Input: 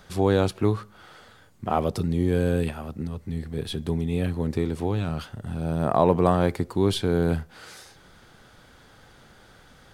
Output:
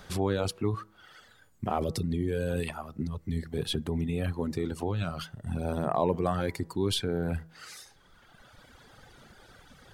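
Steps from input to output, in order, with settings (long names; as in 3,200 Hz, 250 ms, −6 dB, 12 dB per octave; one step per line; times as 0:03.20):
hum removal 162.3 Hz, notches 12
reverb reduction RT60 1.9 s
in parallel at −0.5 dB: compressor whose output falls as the input rises −30 dBFS, ratio −0.5
on the sum: level −6.5 dB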